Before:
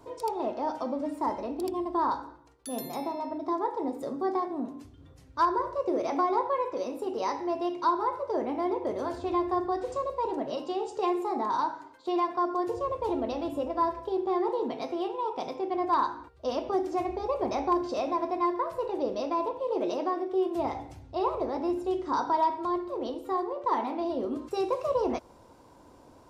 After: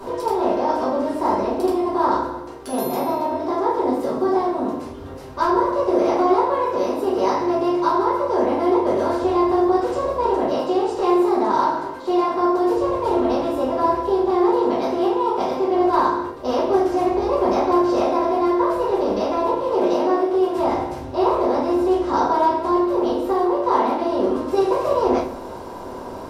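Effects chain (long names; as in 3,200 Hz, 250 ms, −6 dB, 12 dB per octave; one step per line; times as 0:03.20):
compressor on every frequency bin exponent 0.6
rectangular room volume 41 cubic metres, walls mixed, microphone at 1.3 metres
level −3 dB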